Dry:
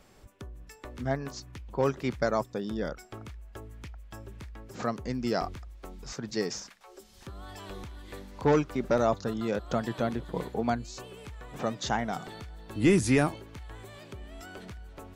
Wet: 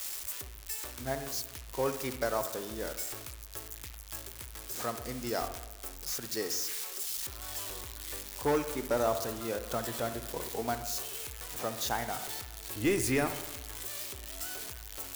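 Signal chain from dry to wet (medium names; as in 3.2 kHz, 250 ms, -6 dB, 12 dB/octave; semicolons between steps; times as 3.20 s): zero-crossing glitches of -25 dBFS; peaking EQ 180 Hz -13 dB 0.76 oct; reverberation RT60 1.1 s, pre-delay 57 ms, DRR 9 dB; trim -3.5 dB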